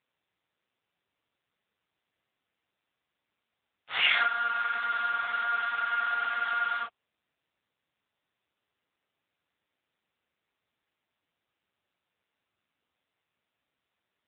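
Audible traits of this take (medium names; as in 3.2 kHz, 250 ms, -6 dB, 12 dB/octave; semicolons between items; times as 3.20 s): a buzz of ramps at a fixed pitch in blocks of 8 samples; AMR-NB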